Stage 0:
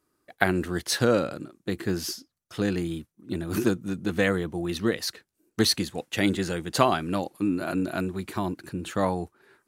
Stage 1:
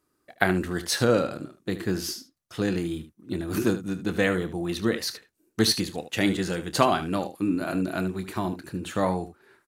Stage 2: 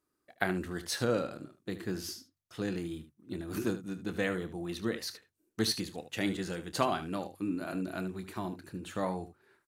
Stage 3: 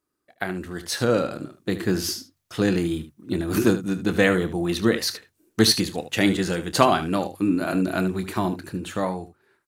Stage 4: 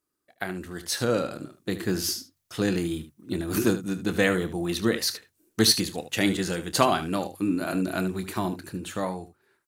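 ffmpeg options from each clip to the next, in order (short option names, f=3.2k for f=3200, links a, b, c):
-af "aecho=1:1:27|75:0.224|0.237"
-af "bandreject=f=47.4:t=h:w=4,bandreject=f=94.8:t=h:w=4,bandreject=f=142.2:t=h:w=4,volume=-8.5dB"
-af "dynaudnorm=f=180:g=11:m=12dB,volume=1.5dB"
-af "highshelf=f=4.7k:g=6,volume=-4dB"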